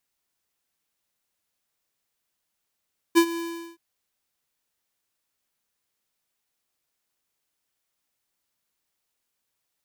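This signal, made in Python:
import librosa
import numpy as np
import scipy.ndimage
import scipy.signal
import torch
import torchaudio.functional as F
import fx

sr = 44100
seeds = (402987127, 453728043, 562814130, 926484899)

y = fx.adsr_tone(sr, wave='square', hz=336.0, attack_ms=27.0, decay_ms=74.0, sustain_db=-16.0, held_s=0.22, release_ms=402.0, level_db=-14.0)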